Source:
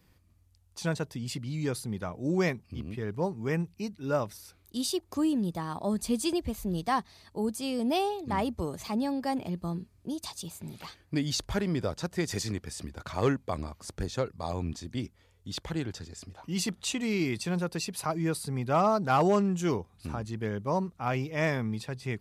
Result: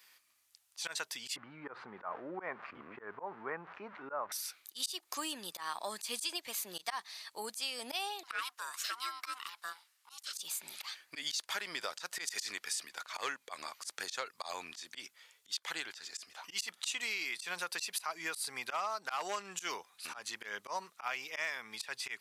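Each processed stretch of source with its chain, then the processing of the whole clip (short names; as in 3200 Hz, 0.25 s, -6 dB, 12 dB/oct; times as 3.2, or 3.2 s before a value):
1.36–4.32 switching spikes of -34 dBFS + LPF 1300 Hz 24 dB/oct + fast leveller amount 50%
8.23–10.35 HPF 540 Hz 24 dB/oct + ring modulator 500 Hz
whole clip: HPF 1500 Hz 12 dB/oct; auto swell 0.125 s; compressor 10:1, threshold -43 dBFS; gain +9.5 dB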